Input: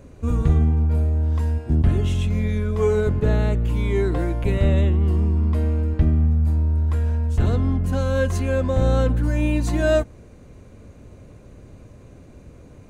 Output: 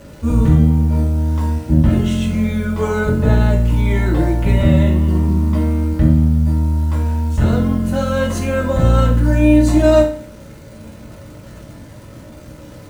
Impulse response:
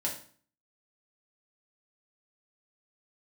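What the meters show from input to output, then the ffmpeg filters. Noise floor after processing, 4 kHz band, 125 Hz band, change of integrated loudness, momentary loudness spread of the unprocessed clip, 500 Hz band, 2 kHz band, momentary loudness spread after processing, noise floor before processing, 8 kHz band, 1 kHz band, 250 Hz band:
-38 dBFS, +6.5 dB, +4.5 dB, +5.5 dB, 4 LU, +4.5 dB, +6.0 dB, 7 LU, -46 dBFS, n/a, +7.5 dB, +9.5 dB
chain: -filter_complex "[0:a]acontrast=64,acrusher=bits=8:dc=4:mix=0:aa=0.000001,equalizer=f=1.3k:w=7.7:g=5[a];[1:a]atrim=start_sample=2205[b];[a][b]afir=irnorm=-1:irlink=0,volume=-3dB"

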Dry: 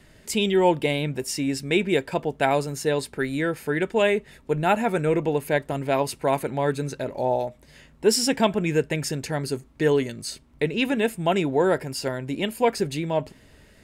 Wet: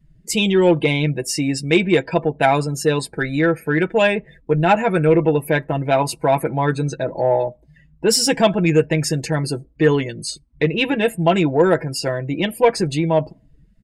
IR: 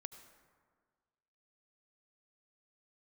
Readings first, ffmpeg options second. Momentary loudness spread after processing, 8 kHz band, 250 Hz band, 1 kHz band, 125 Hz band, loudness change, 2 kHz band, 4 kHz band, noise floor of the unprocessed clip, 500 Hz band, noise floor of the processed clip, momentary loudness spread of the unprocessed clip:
7 LU, +6.0 dB, +6.5 dB, +5.0 dB, +8.5 dB, +6.0 dB, +6.0 dB, +5.5 dB, -54 dBFS, +5.5 dB, -54 dBFS, 8 LU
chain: -filter_complex "[0:a]afftdn=nr=28:nf=-42,aecho=1:1:6.1:0.67,asplit=2[a][b];[b]asoftclip=type=tanh:threshold=-15dB,volume=-4.5dB[c];[a][c]amix=inputs=2:normalize=0,volume=1dB"

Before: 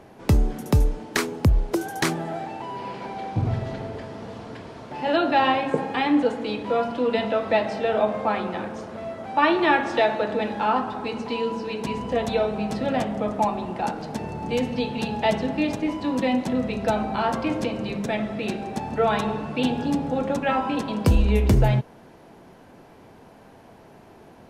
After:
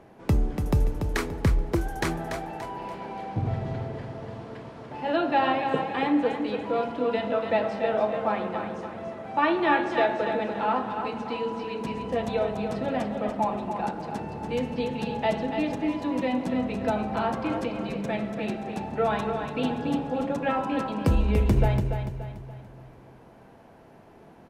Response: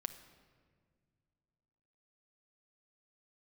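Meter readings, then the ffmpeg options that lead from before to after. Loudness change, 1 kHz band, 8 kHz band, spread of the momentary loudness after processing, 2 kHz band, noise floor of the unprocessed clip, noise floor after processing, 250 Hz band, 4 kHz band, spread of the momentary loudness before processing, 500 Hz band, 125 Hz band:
-3.0 dB, -3.0 dB, n/a, 12 LU, -4.0 dB, -49 dBFS, -51 dBFS, -3.0 dB, -6.0 dB, 12 LU, -3.0 dB, -3.0 dB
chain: -filter_complex "[0:a]aecho=1:1:288|576|864|1152|1440:0.447|0.179|0.0715|0.0286|0.0114,asplit=2[a][b];[1:a]atrim=start_sample=2205,lowpass=3.4k[c];[b][c]afir=irnorm=-1:irlink=0,volume=-2.5dB[d];[a][d]amix=inputs=2:normalize=0,volume=-8dB"

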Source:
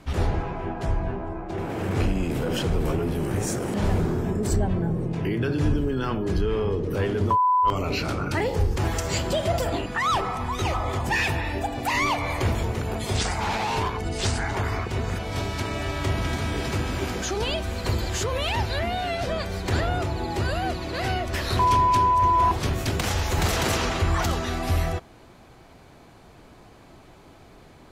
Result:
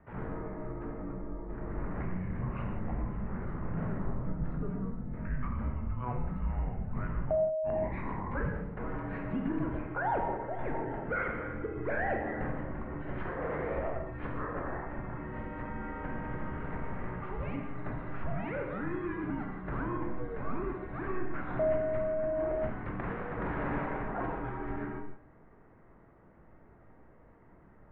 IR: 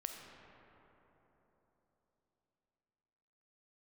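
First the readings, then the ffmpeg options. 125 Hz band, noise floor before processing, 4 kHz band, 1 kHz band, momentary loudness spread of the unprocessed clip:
-12.0 dB, -50 dBFS, under -30 dB, -14.5 dB, 7 LU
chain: -filter_complex "[0:a]highpass=f=170:t=q:w=0.5412,highpass=f=170:t=q:w=1.307,lowpass=f=2.2k:t=q:w=0.5176,lowpass=f=2.2k:t=q:w=0.7071,lowpass=f=2.2k:t=q:w=1.932,afreqshift=-370,bandreject=f=100.9:t=h:w=4,bandreject=f=201.8:t=h:w=4,bandreject=f=302.7:t=h:w=4,bandreject=f=403.6:t=h:w=4,bandreject=f=504.5:t=h:w=4,bandreject=f=605.4:t=h:w=4,bandreject=f=706.3:t=h:w=4,bandreject=f=807.2:t=h:w=4,bandreject=f=908.1:t=h:w=4,bandreject=f=1.009k:t=h:w=4,bandreject=f=1.1099k:t=h:w=4,bandreject=f=1.2108k:t=h:w=4,bandreject=f=1.3117k:t=h:w=4,bandreject=f=1.4126k:t=h:w=4,bandreject=f=1.5135k:t=h:w=4,bandreject=f=1.6144k:t=h:w=4,bandreject=f=1.7153k:t=h:w=4,bandreject=f=1.8162k:t=h:w=4,bandreject=f=1.9171k:t=h:w=4,bandreject=f=2.018k:t=h:w=4,bandreject=f=2.1189k:t=h:w=4,bandreject=f=2.2198k:t=h:w=4,bandreject=f=2.3207k:t=h:w=4,bandreject=f=2.4216k:t=h:w=4,bandreject=f=2.5225k:t=h:w=4,bandreject=f=2.6234k:t=h:w=4,bandreject=f=2.7243k:t=h:w=4,bandreject=f=2.8252k:t=h:w=4,bandreject=f=2.9261k:t=h:w=4,bandreject=f=3.027k:t=h:w=4,bandreject=f=3.1279k:t=h:w=4,bandreject=f=3.2288k:t=h:w=4[a];[1:a]atrim=start_sample=2205,afade=t=out:st=0.35:d=0.01,atrim=end_sample=15876,asetrate=70560,aresample=44100[b];[a][b]afir=irnorm=-1:irlink=0"

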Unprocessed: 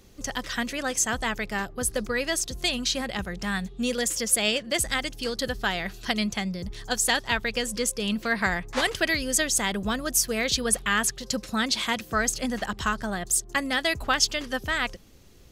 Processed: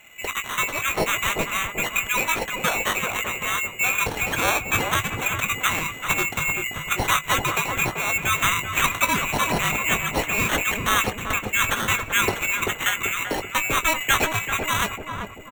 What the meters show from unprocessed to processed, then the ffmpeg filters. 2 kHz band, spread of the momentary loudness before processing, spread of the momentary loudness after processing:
+6.0 dB, 7 LU, 4 LU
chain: -filter_complex "[0:a]afftfilt=real='real(if(lt(b,920),b+92*(1-2*mod(floor(b/92),2)),b),0)':imag='imag(if(lt(b,920),b+92*(1-2*mod(floor(b/92),2)),b),0)':win_size=2048:overlap=0.75,acrossover=split=6500[a][b];[b]acompressor=threshold=-39dB:ratio=4:attack=1:release=60[c];[a][c]amix=inputs=2:normalize=0,acrusher=samples=9:mix=1:aa=0.000001,asplit=2[d][e];[e]adelay=19,volume=-10dB[f];[d][f]amix=inputs=2:normalize=0,asplit=2[g][h];[h]adelay=387,lowpass=f=860:p=1,volume=-3dB,asplit=2[i][j];[j]adelay=387,lowpass=f=860:p=1,volume=0.54,asplit=2[k][l];[l]adelay=387,lowpass=f=860:p=1,volume=0.54,asplit=2[m][n];[n]adelay=387,lowpass=f=860:p=1,volume=0.54,asplit=2[o][p];[p]adelay=387,lowpass=f=860:p=1,volume=0.54,asplit=2[q][r];[r]adelay=387,lowpass=f=860:p=1,volume=0.54,asplit=2[s][t];[t]adelay=387,lowpass=f=860:p=1,volume=0.54[u];[g][i][k][m][o][q][s][u]amix=inputs=8:normalize=0,volume=3.5dB"

